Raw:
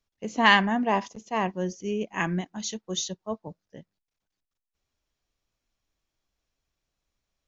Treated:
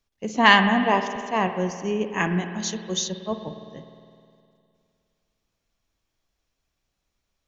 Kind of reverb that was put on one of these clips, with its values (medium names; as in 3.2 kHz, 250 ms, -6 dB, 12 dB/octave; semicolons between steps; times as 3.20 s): spring tank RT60 2.4 s, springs 51 ms, chirp 75 ms, DRR 8 dB; trim +3.5 dB